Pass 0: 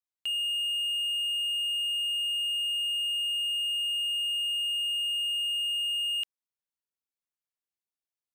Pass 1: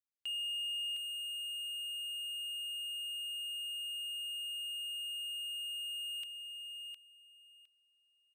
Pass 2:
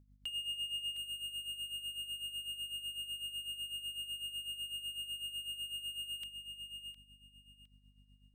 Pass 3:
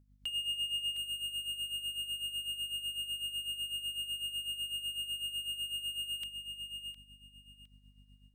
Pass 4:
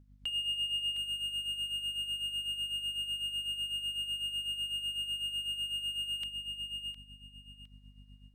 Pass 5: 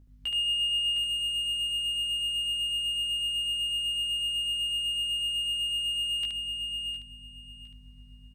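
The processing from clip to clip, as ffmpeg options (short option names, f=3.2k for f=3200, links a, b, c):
-af "aecho=1:1:710|1420|2130:0.447|0.0804|0.0145,volume=-8dB"
-af "aeval=exprs='val(0)+0.000708*(sin(2*PI*50*n/s)+sin(2*PI*2*50*n/s)/2+sin(2*PI*3*50*n/s)/3+sin(2*PI*4*50*n/s)/4+sin(2*PI*5*50*n/s)/5)':c=same,bandreject=f=2.6k:w=8.2,tremolo=f=8:d=0.7,volume=3dB"
-af "dynaudnorm=f=140:g=3:m=5dB,volume=-1dB"
-filter_complex "[0:a]lowpass=f=3.8k:p=1,asplit=2[a][b];[b]alimiter=level_in=14.5dB:limit=-24dB:level=0:latency=1,volume=-14.5dB,volume=-3dB[c];[a][c]amix=inputs=2:normalize=0,volume=1dB"
-af "aecho=1:1:17|73:0.708|0.668,volume=2.5dB"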